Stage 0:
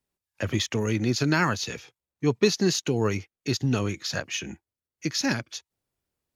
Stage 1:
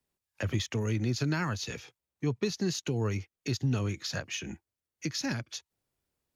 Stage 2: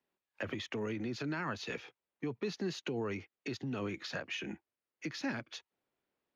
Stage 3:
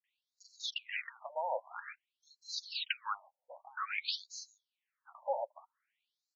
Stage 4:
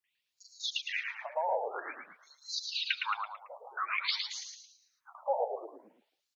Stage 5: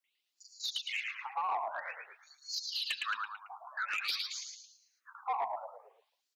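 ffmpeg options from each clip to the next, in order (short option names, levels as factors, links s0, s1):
-filter_complex "[0:a]acrossover=split=140[s0][s1];[s1]acompressor=threshold=0.0141:ratio=2[s2];[s0][s2]amix=inputs=2:normalize=0"
-filter_complex "[0:a]alimiter=level_in=1.33:limit=0.0631:level=0:latency=1:release=34,volume=0.75,acrossover=split=190 3600:gain=0.126 1 0.126[s0][s1][s2];[s0][s1][s2]amix=inputs=3:normalize=0,volume=1.19"
-filter_complex "[0:a]acrossover=split=5800[s0][s1];[s0]adelay=40[s2];[s2][s1]amix=inputs=2:normalize=0,afftfilt=real='re*between(b*sr/1024,680*pow(5700/680,0.5+0.5*sin(2*PI*0.51*pts/sr))/1.41,680*pow(5700/680,0.5+0.5*sin(2*PI*0.51*pts/sr))*1.41)':imag='im*between(b*sr/1024,680*pow(5700/680,0.5+0.5*sin(2*PI*0.51*pts/sr))/1.41,680*pow(5700/680,0.5+0.5*sin(2*PI*0.51*pts/sr))*1.41)':win_size=1024:overlap=0.75,volume=3.55"
-filter_complex "[0:a]asplit=6[s0][s1][s2][s3][s4][s5];[s1]adelay=111,afreqshift=-67,volume=0.562[s6];[s2]adelay=222,afreqshift=-134,volume=0.237[s7];[s3]adelay=333,afreqshift=-201,volume=0.0989[s8];[s4]adelay=444,afreqshift=-268,volume=0.0417[s9];[s5]adelay=555,afreqshift=-335,volume=0.0176[s10];[s0][s6][s7][s8][s9][s10]amix=inputs=6:normalize=0,volume=1.5"
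-af "asoftclip=type=tanh:threshold=0.0447,afreqshift=210"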